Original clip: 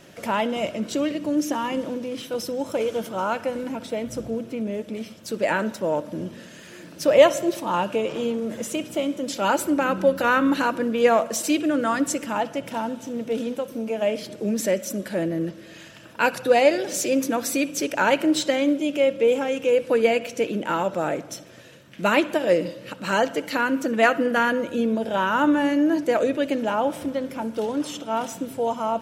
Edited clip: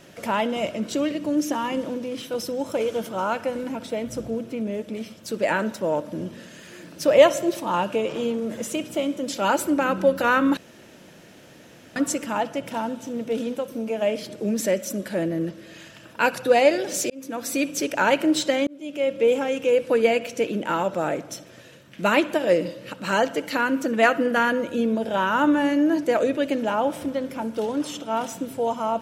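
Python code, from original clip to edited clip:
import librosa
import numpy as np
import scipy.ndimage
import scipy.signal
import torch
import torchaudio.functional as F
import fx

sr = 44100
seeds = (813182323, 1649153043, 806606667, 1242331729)

y = fx.edit(x, sr, fx.room_tone_fill(start_s=10.57, length_s=1.39),
    fx.fade_in_span(start_s=17.1, length_s=0.53),
    fx.fade_in_span(start_s=18.67, length_s=0.57), tone=tone)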